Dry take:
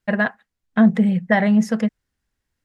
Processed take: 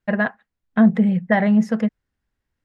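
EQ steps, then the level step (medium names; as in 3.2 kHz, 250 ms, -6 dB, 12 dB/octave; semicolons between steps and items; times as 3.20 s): treble shelf 4.2 kHz -11.5 dB; 0.0 dB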